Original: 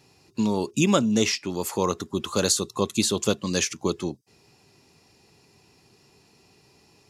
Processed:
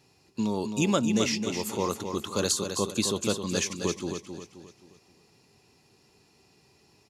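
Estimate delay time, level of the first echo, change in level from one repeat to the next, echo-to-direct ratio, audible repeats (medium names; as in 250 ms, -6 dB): 264 ms, -7.0 dB, -8.0 dB, -6.0 dB, 4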